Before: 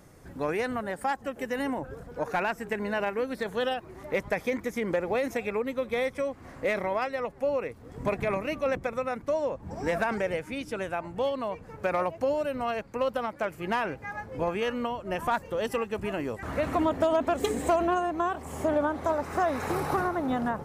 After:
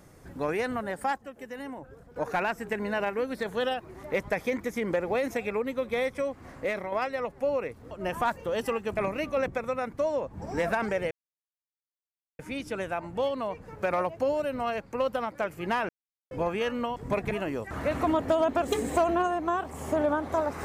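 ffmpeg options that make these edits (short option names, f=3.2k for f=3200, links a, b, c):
-filter_complex "[0:a]asplit=11[a][b][c][d][e][f][g][h][i][j][k];[a]atrim=end=1.182[l];[b]atrim=start=1.178:end=2.162,asetpts=PTS-STARTPTS,volume=-8.5dB[m];[c]atrim=start=2.158:end=6.92,asetpts=PTS-STARTPTS,afade=t=out:st=4.332:d=0.43:silence=0.473151[n];[d]atrim=start=6.92:end=7.912,asetpts=PTS-STARTPTS,afade=t=in:d=0.004:c=hsin:silence=0.473151[o];[e]atrim=start=14.968:end=16.032[p];[f]atrim=start=8.258:end=10.4,asetpts=PTS-STARTPTS,afade=t=out:st=2.138:d=0.004:c=hsin,apad=pad_dur=1.28[q];[g]atrim=start=10.4:end=13.9,asetpts=PTS-STARTPTS,afade=t=in:d=0.004:c=hsin,afade=t=out:st=3.496:d=0.004:c=hsin[r];[h]atrim=start=13.9:end=14.32,asetpts=PTS-STARTPTS,volume=0[s];[i]atrim=start=14.32:end=14.972,asetpts=PTS-STARTPTS,afade=t=in:d=0.004:c=hsin[t];[j]atrim=start=7.908:end=8.262[u];[k]atrim=start=16.028[v];[l][m]acrossfade=d=0.004:c1=hsin:c2=hsin[w];[n][o]concat=n=2:v=0:a=1[x];[w][x]acrossfade=d=0.004:c1=hsin:c2=hsin[y];[y][p]acrossfade=d=0.004:c1=hsin:c2=hsin[z];[q][r][s][t]concat=n=4:v=0:a=1[aa];[z][aa]acrossfade=d=0.004:c1=hsin:c2=hsin[ab];[ab][u]acrossfade=d=0.004:c1=hsin:c2=hsin[ac];[ac][v]acrossfade=d=0.004:c1=hsin:c2=hsin"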